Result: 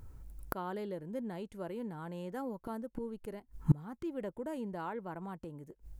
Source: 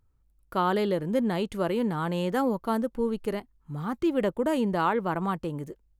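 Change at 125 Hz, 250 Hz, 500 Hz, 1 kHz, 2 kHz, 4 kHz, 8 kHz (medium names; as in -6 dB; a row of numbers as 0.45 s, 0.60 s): -3.5 dB, -12.0 dB, -13.5 dB, -14.5 dB, -15.0 dB, under -15 dB, under -10 dB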